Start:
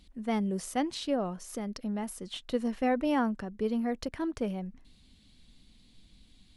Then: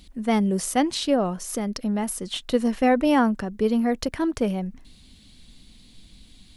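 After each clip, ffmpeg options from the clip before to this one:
-af "highshelf=f=6500:g=5.5,volume=2.66"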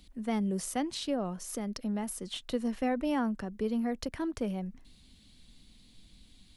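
-filter_complex "[0:a]acrossover=split=220[s0][s1];[s1]acompressor=threshold=0.0355:ratio=1.5[s2];[s0][s2]amix=inputs=2:normalize=0,volume=0.422"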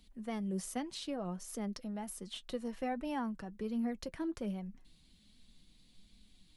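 -af "flanger=delay=4.3:depth=2.2:regen=49:speed=1.3:shape=triangular,volume=0.794"

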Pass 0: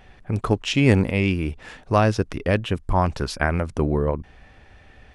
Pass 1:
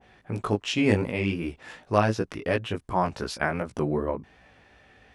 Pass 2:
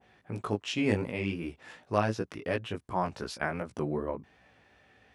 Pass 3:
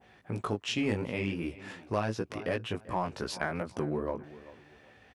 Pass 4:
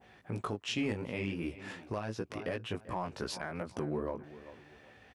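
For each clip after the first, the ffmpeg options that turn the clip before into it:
-af "flanger=delay=16.5:depth=3.2:speed=2.7,highpass=f=180:p=1,adynamicequalizer=threshold=0.0178:dfrequency=1600:dqfactor=0.7:tfrequency=1600:tqfactor=0.7:attack=5:release=100:ratio=0.375:range=2:mode=cutabove:tftype=highshelf"
-af "highpass=68,volume=0.531"
-filter_complex "[0:a]asplit=2[s0][s1];[s1]adelay=389,lowpass=f=4500:p=1,volume=0.0944,asplit=2[s2][s3];[s3]adelay=389,lowpass=f=4500:p=1,volume=0.3[s4];[s0][s2][s4]amix=inputs=3:normalize=0,asplit=2[s5][s6];[s6]volume=18.8,asoftclip=hard,volume=0.0531,volume=0.422[s7];[s5][s7]amix=inputs=2:normalize=0,acompressor=threshold=0.0316:ratio=2"
-af "alimiter=level_in=1.06:limit=0.0631:level=0:latency=1:release=423,volume=0.944"

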